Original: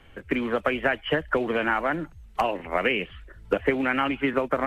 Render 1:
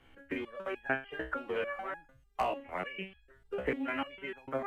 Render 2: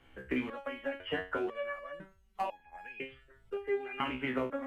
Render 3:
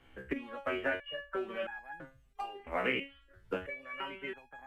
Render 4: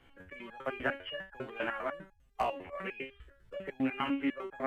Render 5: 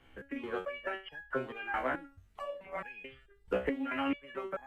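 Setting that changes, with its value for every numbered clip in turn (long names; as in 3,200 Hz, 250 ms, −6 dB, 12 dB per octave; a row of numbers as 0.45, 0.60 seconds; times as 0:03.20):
step-sequenced resonator, speed: 6.7, 2, 3, 10, 4.6 Hertz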